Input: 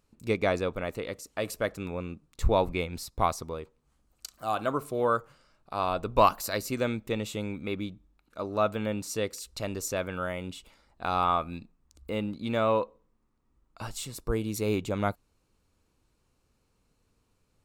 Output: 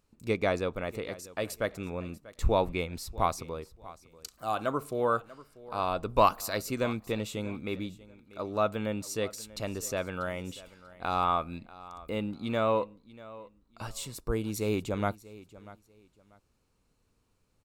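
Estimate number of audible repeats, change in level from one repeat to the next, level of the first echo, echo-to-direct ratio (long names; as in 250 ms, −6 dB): 2, −12.5 dB, −19.0 dB, −19.0 dB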